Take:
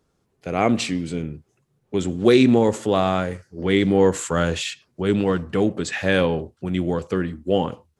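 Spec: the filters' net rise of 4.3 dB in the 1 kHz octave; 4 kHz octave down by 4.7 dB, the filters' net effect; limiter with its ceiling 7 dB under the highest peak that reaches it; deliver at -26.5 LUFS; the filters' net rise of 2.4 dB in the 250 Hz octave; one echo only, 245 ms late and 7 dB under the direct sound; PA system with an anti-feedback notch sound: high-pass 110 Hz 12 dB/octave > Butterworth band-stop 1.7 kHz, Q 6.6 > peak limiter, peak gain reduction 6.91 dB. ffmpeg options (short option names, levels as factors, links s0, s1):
-af "equalizer=f=250:t=o:g=3,equalizer=f=1000:t=o:g=6,equalizer=f=4000:t=o:g=-6.5,alimiter=limit=0.376:level=0:latency=1,highpass=110,asuperstop=centerf=1700:order=8:qfactor=6.6,aecho=1:1:245:0.447,volume=0.708,alimiter=limit=0.178:level=0:latency=1"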